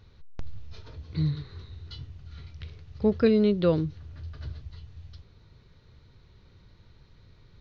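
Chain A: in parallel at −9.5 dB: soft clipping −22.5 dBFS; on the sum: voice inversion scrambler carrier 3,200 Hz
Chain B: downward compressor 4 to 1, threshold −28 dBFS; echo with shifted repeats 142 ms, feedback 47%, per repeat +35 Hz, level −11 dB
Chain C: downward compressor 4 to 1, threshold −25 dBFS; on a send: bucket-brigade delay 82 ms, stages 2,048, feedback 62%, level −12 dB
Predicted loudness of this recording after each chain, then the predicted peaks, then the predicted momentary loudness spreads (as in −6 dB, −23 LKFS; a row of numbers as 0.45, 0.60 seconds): −23.5, −36.5, −34.0 LKFS; −8.5, −18.5, −16.5 dBFS; 19, 19, 18 LU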